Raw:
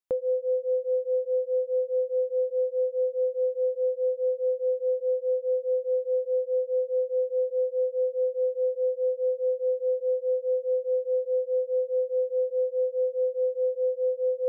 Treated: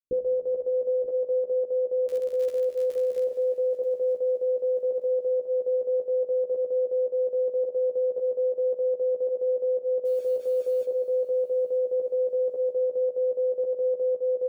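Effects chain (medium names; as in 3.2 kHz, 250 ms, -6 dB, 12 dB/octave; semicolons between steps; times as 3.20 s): steep low-pass 510 Hz 96 dB/octave; level held to a coarse grid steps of 17 dB; in parallel at -1.5 dB: peak limiter -40 dBFS, peak gain reduction 10.5 dB; 2.06–3.23 s: on the sum: crackle 43 per s -35 dBFS; 10.05–10.85 s: word length cut 10-bit, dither none; volume shaper 110 bpm, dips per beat 1, -22 dB, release 65 ms; doubling 14 ms -2.5 dB; on a send: feedback delay 934 ms, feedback 40%, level -17 dB; on the sum: plate-style reverb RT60 3.5 s, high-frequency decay 0.9×, DRR 8 dB; trim +3.5 dB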